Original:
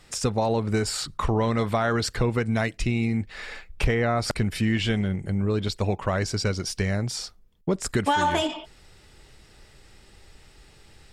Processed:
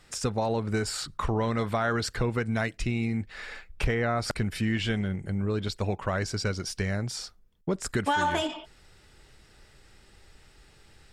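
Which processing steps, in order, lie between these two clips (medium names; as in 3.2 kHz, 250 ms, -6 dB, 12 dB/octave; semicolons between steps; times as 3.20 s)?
peaking EQ 1.5 kHz +3.5 dB 0.49 oct; trim -4 dB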